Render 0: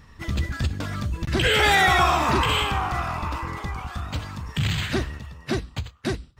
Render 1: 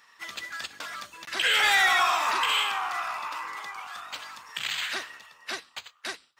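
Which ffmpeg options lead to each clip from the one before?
-af "highpass=1k,asoftclip=type=tanh:threshold=-13dB"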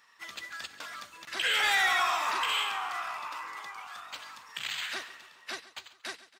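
-af "aecho=1:1:138|276|414|552|690:0.141|0.0805|0.0459|0.0262|0.0149,volume=-4.5dB"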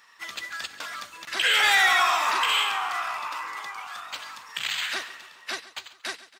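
-af "lowshelf=f=490:g=-3,volume=6.5dB"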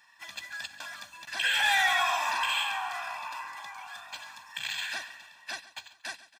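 -af "aecho=1:1:1.2:0.96,volume=-8dB"

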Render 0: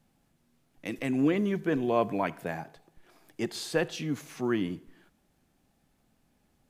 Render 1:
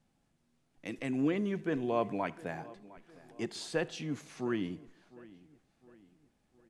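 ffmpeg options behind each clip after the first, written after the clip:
-filter_complex "[0:a]lowpass=f=10k:w=0.5412,lowpass=f=10k:w=1.3066,asplit=2[a][b];[b]adelay=707,lowpass=f=3.3k:p=1,volume=-20dB,asplit=2[c][d];[d]adelay=707,lowpass=f=3.3k:p=1,volume=0.47,asplit=2[e][f];[f]adelay=707,lowpass=f=3.3k:p=1,volume=0.47,asplit=2[g][h];[h]adelay=707,lowpass=f=3.3k:p=1,volume=0.47[i];[a][c][e][g][i]amix=inputs=5:normalize=0,volume=-5dB"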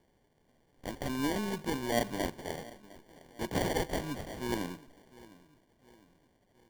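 -af "aeval=exprs='if(lt(val(0),0),0.708*val(0),val(0))':c=same,crystalizer=i=8.5:c=0,acrusher=samples=34:mix=1:aa=0.000001,volume=-1.5dB"

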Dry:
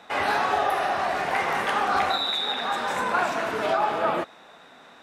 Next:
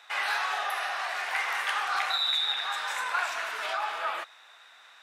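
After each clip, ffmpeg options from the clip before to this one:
-af "highpass=1.4k"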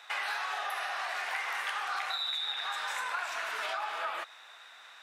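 -af "acompressor=threshold=-34dB:ratio=4,volume=1.5dB"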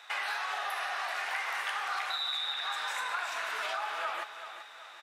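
-af "aecho=1:1:383|766|1149|1532|1915:0.282|0.127|0.0571|0.0257|0.0116"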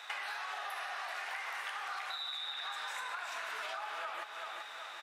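-af "acompressor=threshold=-43dB:ratio=4,volume=3.5dB"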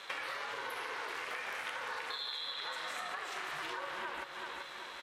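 -af "aeval=exprs='val(0)*sin(2*PI*290*n/s)':c=same,volume=3dB"

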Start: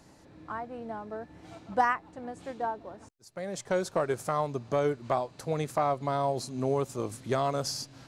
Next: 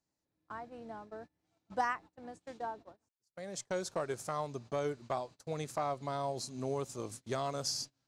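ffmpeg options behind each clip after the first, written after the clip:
-af "agate=range=-25dB:threshold=-41dB:ratio=16:detection=peak,equalizer=f=6.1k:w=0.72:g=7.5,volume=-8dB"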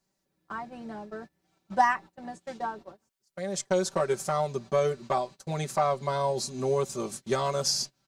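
-af "aecho=1:1:5.2:0.82,volume=6.5dB"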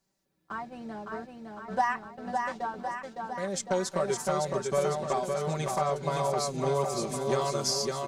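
-filter_complex "[0:a]acompressor=threshold=-30dB:ratio=1.5,asplit=2[a][b];[b]aecho=0:1:560|1064|1518|1926|2293:0.631|0.398|0.251|0.158|0.1[c];[a][c]amix=inputs=2:normalize=0"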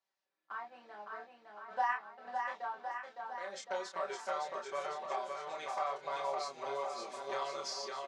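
-filter_complex "[0:a]flanger=delay=0.3:depth=3.7:regen=-74:speed=0.79:shape=sinusoidal,highpass=760,lowpass=3.7k,asplit=2[a][b];[b]adelay=29,volume=-4dB[c];[a][c]amix=inputs=2:normalize=0,volume=-1dB"

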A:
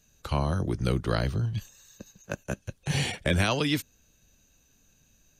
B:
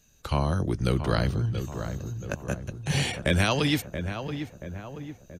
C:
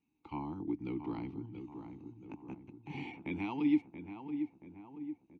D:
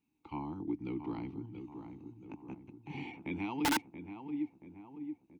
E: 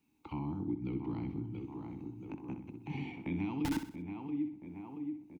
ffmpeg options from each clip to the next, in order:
-filter_complex "[0:a]asplit=2[a][b];[b]adelay=679,lowpass=f=1.6k:p=1,volume=-8dB,asplit=2[c][d];[d]adelay=679,lowpass=f=1.6k:p=1,volume=0.54,asplit=2[e][f];[f]adelay=679,lowpass=f=1.6k:p=1,volume=0.54,asplit=2[g][h];[h]adelay=679,lowpass=f=1.6k:p=1,volume=0.54,asplit=2[i][j];[j]adelay=679,lowpass=f=1.6k:p=1,volume=0.54,asplit=2[k][l];[l]adelay=679,lowpass=f=1.6k:p=1,volume=0.54[m];[a][c][e][g][i][k][m]amix=inputs=7:normalize=0,volume=1.5dB"
-filter_complex "[0:a]asplit=3[a][b][c];[a]bandpass=f=300:t=q:w=8,volume=0dB[d];[b]bandpass=f=870:t=q:w=8,volume=-6dB[e];[c]bandpass=f=2.24k:t=q:w=8,volume=-9dB[f];[d][e][f]amix=inputs=3:normalize=0,aemphasis=mode=reproduction:type=75fm"
-af "aeval=exprs='(mod(17.8*val(0)+1,2)-1)/17.8':c=same"
-filter_complex "[0:a]acrossover=split=250[a][b];[b]acompressor=threshold=-54dB:ratio=2.5[c];[a][c]amix=inputs=2:normalize=0,asplit=2[d][e];[e]aecho=0:1:63|126|189|252:0.335|0.134|0.0536|0.0214[f];[d][f]amix=inputs=2:normalize=0,volume=6dB"

